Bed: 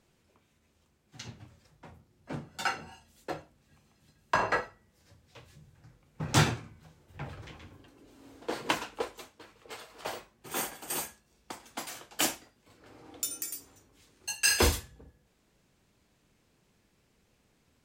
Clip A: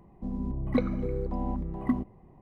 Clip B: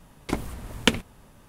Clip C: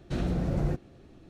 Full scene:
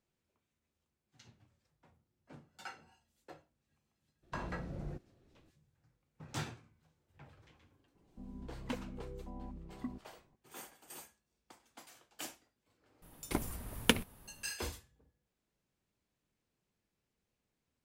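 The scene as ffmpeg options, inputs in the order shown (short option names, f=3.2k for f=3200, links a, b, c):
-filter_complex "[0:a]volume=-16.5dB[a];[2:a]aexciter=amount=1.5:drive=9.9:freq=9.6k[b];[3:a]atrim=end=1.29,asetpts=PTS-STARTPTS,volume=-15dB,afade=t=in:d=0.02,afade=t=out:st=1.27:d=0.02,adelay=4220[c];[1:a]atrim=end=2.41,asetpts=PTS-STARTPTS,volume=-15.5dB,afade=t=in:d=0.004:c=hsin,afade=t=out:st=2.406:d=0.004:c=hsin,adelay=7950[d];[b]atrim=end=1.48,asetpts=PTS-STARTPTS,volume=-7.5dB,afade=t=in:d=0.004:c=hsin,afade=t=out:st=1.476:d=0.004:c=hsin,adelay=13020[e];[a][c][d][e]amix=inputs=4:normalize=0"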